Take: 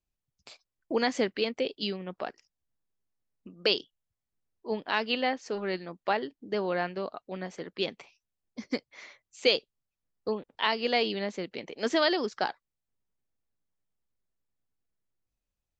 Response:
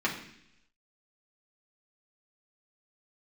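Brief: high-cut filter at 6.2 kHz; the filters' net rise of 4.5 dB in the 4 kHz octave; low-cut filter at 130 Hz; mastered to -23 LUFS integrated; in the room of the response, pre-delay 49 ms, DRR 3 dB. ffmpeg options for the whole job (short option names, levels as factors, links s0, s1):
-filter_complex "[0:a]highpass=130,lowpass=6200,equalizer=f=4000:t=o:g=6.5,asplit=2[s0][s1];[1:a]atrim=start_sample=2205,adelay=49[s2];[s1][s2]afir=irnorm=-1:irlink=0,volume=0.224[s3];[s0][s3]amix=inputs=2:normalize=0,volume=1.78"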